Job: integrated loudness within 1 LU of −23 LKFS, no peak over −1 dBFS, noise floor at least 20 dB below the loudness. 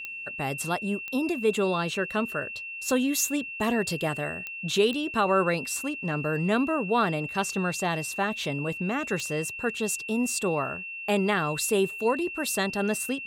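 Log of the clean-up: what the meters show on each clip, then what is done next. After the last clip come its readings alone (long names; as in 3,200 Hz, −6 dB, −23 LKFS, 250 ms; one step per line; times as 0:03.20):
number of clicks 5; interfering tone 2,700 Hz; level of the tone −35 dBFS; integrated loudness −27.5 LKFS; sample peak −12.0 dBFS; target loudness −23.0 LKFS
→ click removal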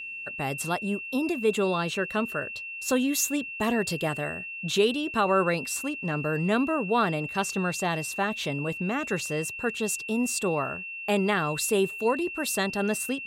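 number of clicks 0; interfering tone 2,700 Hz; level of the tone −35 dBFS
→ notch filter 2,700 Hz, Q 30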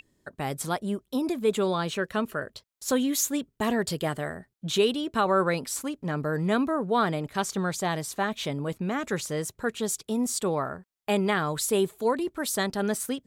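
interfering tone none found; integrated loudness −28.0 LKFS; sample peak −12.5 dBFS; target loudness −23.0 LKFS
→ level +5 dB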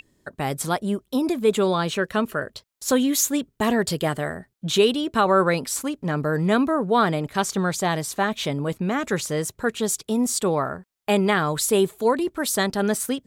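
integrated loudness −23.0 LKFS; sample peak −7.5 dBFS; background noise floor −73 dBFS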